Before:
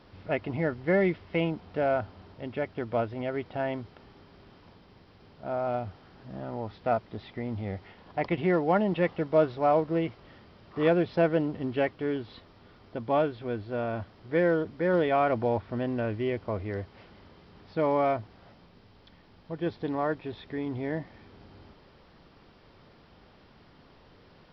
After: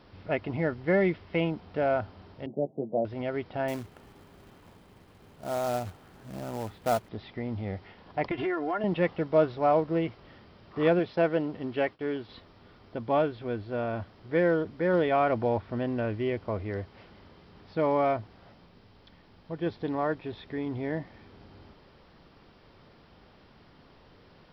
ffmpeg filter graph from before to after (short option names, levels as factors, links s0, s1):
-filter_complex "[0:a]asettb=1/sr,asplit=3[s0][s1][s2];[s0]atrim=end=2.464[s3];[s1]atrim=start=2.46:end=3.05,asetpts=PTS-STARTPTS,afade=t=in:d=0.004:c=qsin,afade=t=out:st=0.586:d=0.004:c=qsin,asuperpass=centerf=310:order=12:qfactor=0.5,asplit=2[s4][s5];[s5]adelay=14,volume=0.447[s6];[s4][s6]amix=inputs=2:normalize=0,atrim=end_sample=26019[s7];[s2]atrim=start=3.046[s8];[s3][s7]acrossfade=d=0.004:c1=hsin:c2=qsin[s9];[s9][s8]acrossfade=d=0.004:c1=qsin:c2=hsin,asettb=1/sr,asplit=3[s10][s11][s12];[s10]atrim=end=3.684[s13];[s11]atrim=start=3.68:end=7.09,asetpts=PTS-STARTPTS,afade=t=in:d=0.004:c=qsin,afade=t=out:st=3.406:d=0.004:c=qsin,lowpass=3600,acrusher=bits=3:mode=log:mix=0:aa=0.000001[s14];[s12]atrim=start=7.086[s15];[s13][s14]acrossfade=d=0.004:c1=hsin:c2=qsin[s16];[s16][s15]acrossfade=d=0.004:c1=qsin:c2=hsin,asettb=1/sr,asplit=3[s17][s18][s19];[s17]atrim=end=8.314[s20];[s18]atrim=start=8.31:end=8.84,asetpts=PTS-STARTPTS,afade=t=in:d=0.004:c=qsin,afade=t=out:st=0.526:d=0.004:c=qsin,equalizer=f=1400:w=1.3:g=6.5,aecho=1:1:2.9:1,atrim=end_sample=23373,acompressor=threshold=0.0447:ratio=5:attack=3.2:release=140:knee=1:detection=peak[s21];[s19]atrim=start=8.836[s22];[s20][s21]acrossfade=d=0.004:c1=hsin:c2=qsin[s23];[s23][s22]acrossfade=d=0.004:c1=qsin:c2=hsin,asettb=1/sr,asplit=3[s24][s25][s26];[s24]atrim=end=10.994[s27];[s25]atrim=start=10.99:end=12.29,asetpts=PTS-STARTPTS,afade=t=in:d=0.004:c=qsin,afade=t=out:st=1.296:d=0.004:c=qsin,agate=range=0.0224:threshold=0.00562:ratio=3:release=100:detection=peak,lowshelf=f=190:g=-7.5[s28];[s26]atrim=start=12.286[s29];[s27][s28]acrossfade=d=0.004:c1=hsin:c2=qsin[s30];[s30][s29]acrossfade=d=0.004:c1=qsin:c2=hsin"